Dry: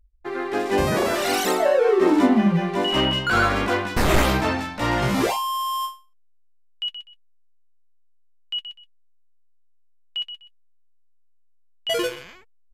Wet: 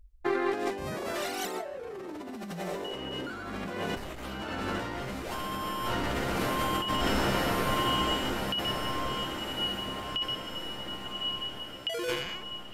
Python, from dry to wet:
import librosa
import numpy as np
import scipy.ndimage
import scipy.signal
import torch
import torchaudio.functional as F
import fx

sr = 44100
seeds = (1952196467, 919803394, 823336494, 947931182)

y = fx.echo_diffused(x, sr, ms=1166, feedback_pct=56, wet_db=-6)
y = fx.over_compress(y, sr, threshold_db=-30.0, ratio=-1.0)
y = F.gain(torch.from_numpy(y), -3.0).numpy()